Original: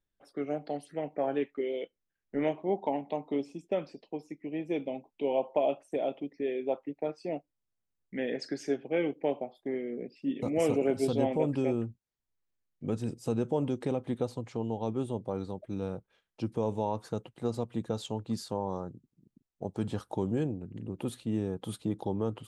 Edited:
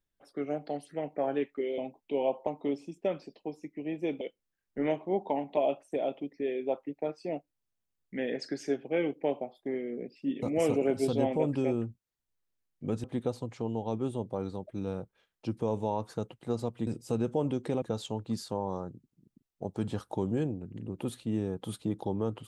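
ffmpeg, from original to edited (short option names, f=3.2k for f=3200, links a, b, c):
-filter_complex "[0:a]asplit=8[a][b][c][d][e][f][g][h];[a]atrim=end=1.782[i];[b]atrim=start=4.878:end=5.572[j];[c]atrim=start=3.138:end=4.882[k];[d]atrim=start=1.778:end=3.142[l];[e]atrim=start=5.568:end=13.042[m];[f]atrim=start=13.988:end=17.822[n];[g]atrim=start=13.038:end=13.992[o];[h]atrim=start=17.818[p];[i][j]acrossfade=d=0.004:c1=hsin:c2=hsin[q];[q][k]acrossfade=d=0.004:c1=hsin:c2=hsin[r];[r][l]acrossfade=d=0.004:c1=hsin:c2=hsin[s];[s][m]acrossfade=d=0.004:c1=hsin:c2=hsin[t];[t][n]acrossfade=d=0.004:c1=hsin:c2=hsin[u];[u][o]acrossfade=d=0.004:c1=hsin:c2=hsin[v];[v][p]acrossfade=d=0.004:c1=hsin:c2=hsin"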